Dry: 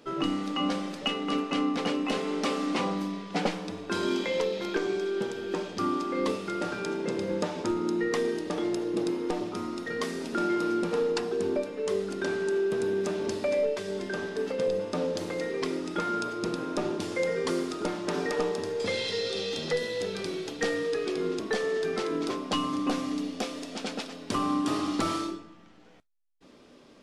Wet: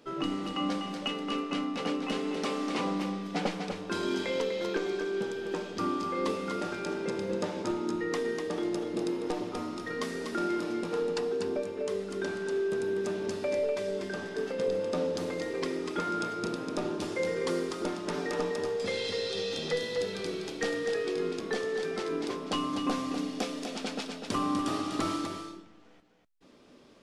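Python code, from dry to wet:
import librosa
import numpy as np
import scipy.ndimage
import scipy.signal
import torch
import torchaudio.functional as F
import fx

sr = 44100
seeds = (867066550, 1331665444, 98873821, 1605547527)

y = fx.rider(x, sr, range_db=10, speed_s=2.0)
y = y + 10.0 ** (-6.5 / 20.0) * np.pad(y, (int(247 * sr / 1000.0), 0))[:len(y)]
y = y * librosa.db_to_amplitude(-3.5)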